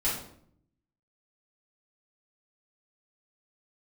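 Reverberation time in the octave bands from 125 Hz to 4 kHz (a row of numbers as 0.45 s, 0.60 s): 1.1 s, 0.95 s, 0.70 s, 0.55 s, 0.50 s, 0.45 s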